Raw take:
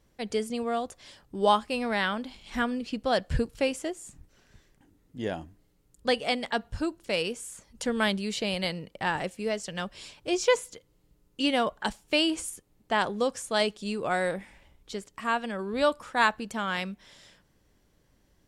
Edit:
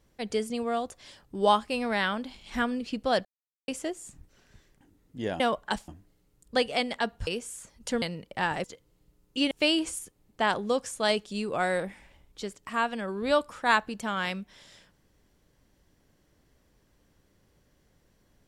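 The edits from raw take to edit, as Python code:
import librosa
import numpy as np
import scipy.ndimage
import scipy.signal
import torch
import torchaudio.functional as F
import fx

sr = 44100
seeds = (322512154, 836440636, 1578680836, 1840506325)

y = fx.edit(x, sr, fx.silence(start_s=3.25, length_s=0.43),
    fx.cut(start_s=6.79, length_s=0.42),
    fx.cut(start_s=7.96, length_s=0.7),
    fx.cut(start_s=9.28, length_s=1.39),
    fx.move(start_s=11.54, length_s=0.48, to_s=5.4), tone=tone)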